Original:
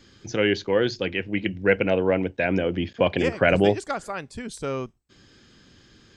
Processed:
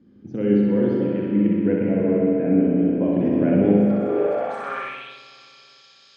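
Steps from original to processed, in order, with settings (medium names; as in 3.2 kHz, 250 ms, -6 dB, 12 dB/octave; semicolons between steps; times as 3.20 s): 1.85–3.15 s: distance through air 220 m; on a send: flutter echo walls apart 10.8 m, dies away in 1.1 s; on the sum: spring tank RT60 3.6 s, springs 39/49 ms, chirp 70 ms, DRR -2 dB; band-pass sweep 220 Hz -> 4.6 kHz, 4.00–5.22 s; trim +6 dB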